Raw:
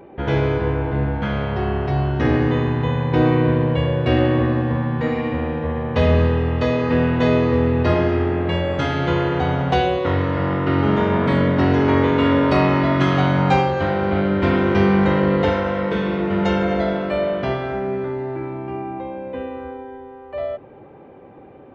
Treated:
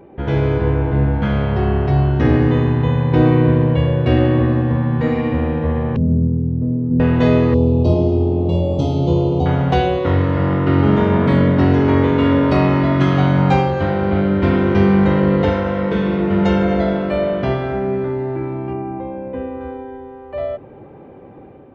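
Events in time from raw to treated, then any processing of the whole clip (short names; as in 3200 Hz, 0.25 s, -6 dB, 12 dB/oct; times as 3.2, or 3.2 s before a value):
5.96–7 Butterworth band-pass 170 Hz, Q 1
7.54–9.46 Butterworth band-stop 1700 Hz, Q 0.58
18.73–19.61 air absorption 340 m
whole clip: AGC gain up to 4 dB; low shelf 390 Hz +6.5 dB; gain -3.5 dB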